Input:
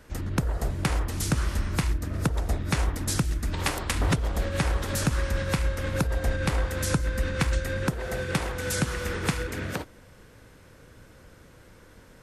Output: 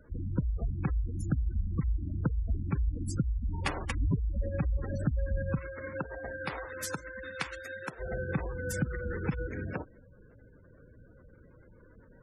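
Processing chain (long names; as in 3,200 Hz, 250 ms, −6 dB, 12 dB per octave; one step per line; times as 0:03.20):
0:05.58–0:07.99: high-pass filter 360 Hz → 1,100 Hz 6 dB per octave
gate on every frequency bin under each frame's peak −15 dB strong
level −3.5 dB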